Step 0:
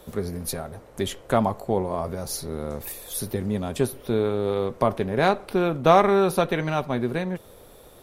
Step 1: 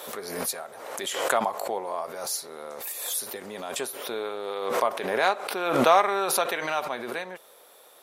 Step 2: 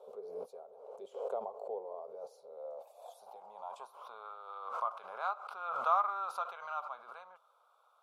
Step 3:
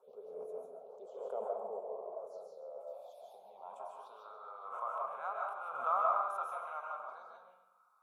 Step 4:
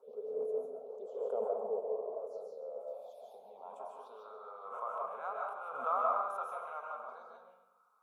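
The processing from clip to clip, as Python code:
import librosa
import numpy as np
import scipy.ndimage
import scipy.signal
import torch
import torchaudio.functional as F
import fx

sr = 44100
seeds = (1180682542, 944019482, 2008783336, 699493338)

y1 = scipy.signal.sosfilt(scipy.signal.butter(2, 700.0, 'highpass', fs=sr, output='sos'), x)
y1 = fx.dynamic_eq(y1, sr, hz=7400.0, q=4.1, threshold_db=-56.0, ratio=4.0, max_db=5)
y1 = fx.pre_swell(y1, sr, db_per_s=44.0)
y2 = fx.filter_sweep_bandpass(y1, sr, from_hz=430.0, to_hz=1300.0, start_s=2.14, end_s=4.34, q=5.1)
y2 = fx.fixed_phaser(y2, sr, hz=760.0, stages=4)
y2 = y2 * librosa.db_to_amplitude(1.0)
y3 = fx.env_phaser(y2, sr, low_hz=480.0, high_hz=4600.0, full_db=-42.0)
y3 = fx.echo_feedback(y3, sr, ms=135, feedback_pct=41, wet_db=-12.5)
y3 = fx.rev_freeverb(y3, sr, rt60_s=0.64, hf_ratio=0.4, predelay_ms=110, drr_db=-1.5)
y3 = y3 * librosa.db_to_amplitude(-4.5)
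y4 = fx.small_body(y3, sr, hz=(250.0, 440.0), ring_ms=35, db=11)
y4 = y4 * librosa.db_to_amplitude(-1.5)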